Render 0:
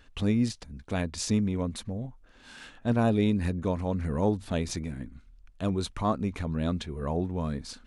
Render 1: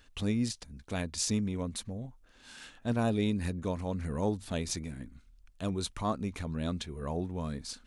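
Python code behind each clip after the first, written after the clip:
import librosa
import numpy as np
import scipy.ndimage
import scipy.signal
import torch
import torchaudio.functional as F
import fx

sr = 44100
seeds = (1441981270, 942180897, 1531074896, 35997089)

y = fx.high_shelf(x, sr, hz=3800.0, db=9.0)
y = y * 10.0 ** (-5.0 / 20.0)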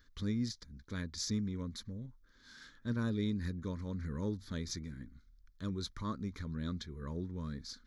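y = fx.fixed_phaser(x, sr, hz=2700.0, stages=6)
y = y * 10.0 ** (-3.5 / 20.0)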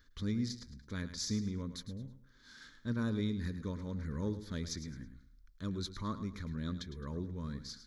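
y = fx.echo_feedback(x, sr, ms=107, feedback_pct=30, wet_db=-12.0)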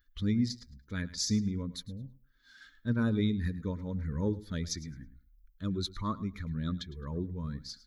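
y = fx.bin_expand(x, sr, power=1.5)
y = y * 10.0 ** (7.5 / 20.0)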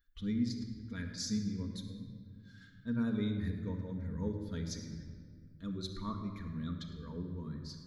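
y = fx.room_shoebox(x, sr, seeds[0], volume_m3=3700.0, walls='mixed', distance_m=1.7)
y = y * 10.0 ** (-8.0 / 20.0)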